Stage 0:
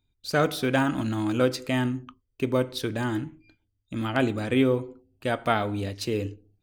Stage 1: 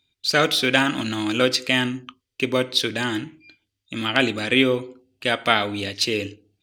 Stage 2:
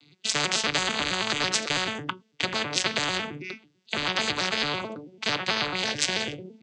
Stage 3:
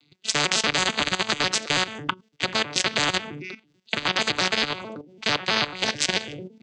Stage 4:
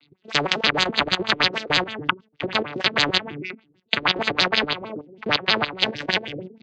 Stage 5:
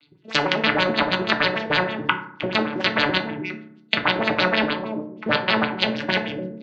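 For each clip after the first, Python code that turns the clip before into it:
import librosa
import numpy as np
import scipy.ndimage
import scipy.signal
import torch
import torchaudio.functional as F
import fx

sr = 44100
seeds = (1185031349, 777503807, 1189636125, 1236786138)

y1 = fx.weighting(x, sr, curve='D')
y1 = F.gain(torch.from_numpy(y1), 3.0).numpy()
y2 = fx.vocoder_arp(y1, sr, chord='major triad', root=50, every_ms=110)
y2 = fx.spectral_comp(y2, sr, ratio=10.0)
y3 = fx.level_steps(y2, sr, step_db=14)
y3 = F.gain(torch.from_numpy(y3), 6.0).numpy()
y4 = fx.filter_lfo_lowpass(y3, sr, shape='sine', hz=6.4, low_hz=350.0, high_hz=4600.0, q=2.4)
y4 = F.gain(torch.from_numpy(y4), 1.0).numpy()
y5 = fx.env_lowpass_down(y4, sr, base_hz=2900.0, full_db=-18.5)
y5 = fx.rev_fdn(y5, sr, rt60_s=0.64, lf_ratio=1.45, hf_ratio=0.45, size_ms=10.0, drr_db=3.0)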